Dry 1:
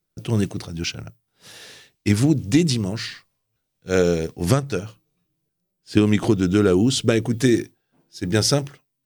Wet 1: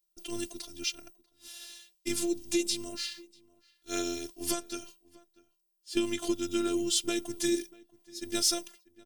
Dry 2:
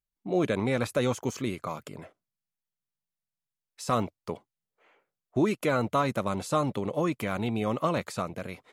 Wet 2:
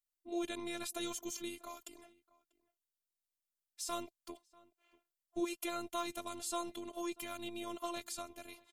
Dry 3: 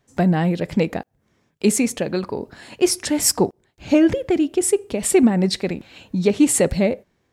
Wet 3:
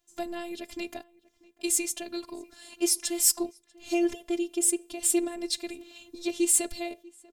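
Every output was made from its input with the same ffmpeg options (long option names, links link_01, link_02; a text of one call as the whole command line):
ffmpeg -i in.wav -filter_complex "[0:a]asplit=2[link_01][link_02];[link_02]adelay=641.4,volume=-23dB,highshelf=frequency=4000:gain=-14.4[link_03];[link_01][link_03]amix=inputs=2:normalize=0,aexciter=amount=2.3:drive=7.8:freq=2700,afftfilt=real='hypot(re,im)*cos(PI*b)':imag='0':win_size=512:overlap=0.75,volume=-10dB" out.wav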